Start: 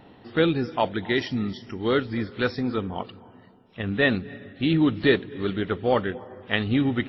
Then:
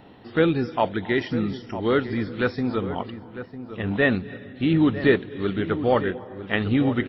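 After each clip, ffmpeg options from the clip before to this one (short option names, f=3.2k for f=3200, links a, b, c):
-filter_complex "[0:a]acrossover=split=2900[a][b];[b]acompressor=threshold=-45dB:ratio=4:attack=1:release=60[c];[a][c]amix=inputs=2:normalize=0,asplit=2[d][e];[e]adelay=952,lowpass=f=1.5k:p=1,volume=-11.5dB,asplit=2[f][g];[g]adelay=952,lowpass=f=1.5k:p=1,volume=0.31,asplit=2[h][i];[i]adelay=952,lowpass=f=1.5k:p=1,volume=0.31[j];[d][f][h][j]amix=inputs=4:normalize=0,volume=1.5dB"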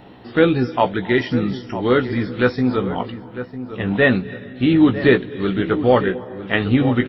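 -filter_complex "[0:a]asplit=2[a][b];[b]adelay=16,volume=-7dB[c];[a][c]amix=inputs=2:normalize=0,volume=4.5dB"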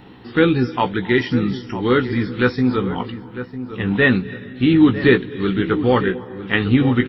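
-af "equalizer=f=630:w=3.4:g=-13,volume=1.5dB"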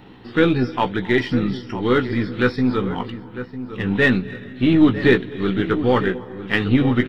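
-af "aeval=exprs='if(lt(val(0),0),0.708*val(0),val(0))':c=same"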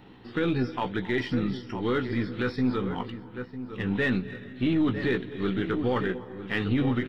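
-af "alimiter=limit=-10.5dB:level=0:latency=1:release=28,volume=-6.5dB"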